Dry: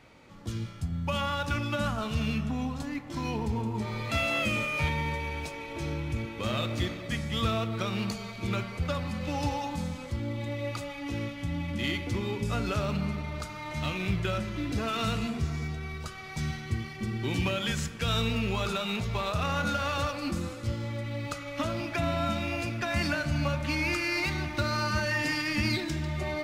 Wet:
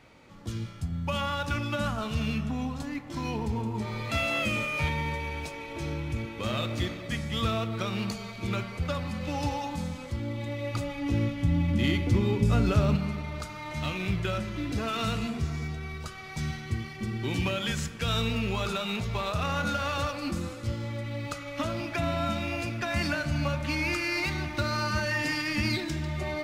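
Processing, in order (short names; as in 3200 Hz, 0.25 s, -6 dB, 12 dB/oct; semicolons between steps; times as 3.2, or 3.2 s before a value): 10.74–12.96 low shelf 420 Hz +9 dB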